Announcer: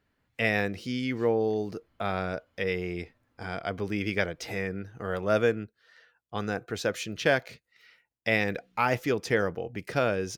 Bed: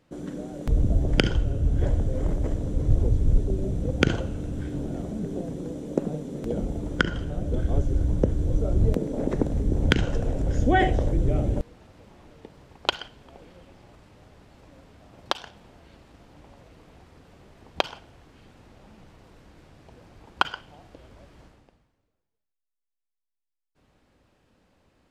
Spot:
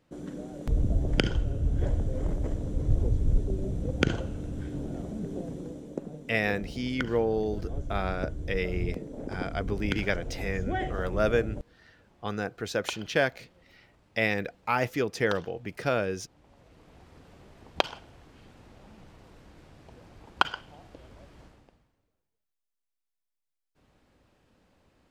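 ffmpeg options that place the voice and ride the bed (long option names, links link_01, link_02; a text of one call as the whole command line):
ffmpeg -i stem1.wav -i stem2.wav -filter_complex "[0:a]adelay=5900,volume=-1dB[link_01];[1:a]volume=6dB,afade=type=out:start_time=5.54:duration=0.48:silence=0.446684,afade=type=in:start_time=16.38:duration=0.79:silence=0.316228[link_02];[link_01][link_02]amix=inputs=2:normalize=0" out.wav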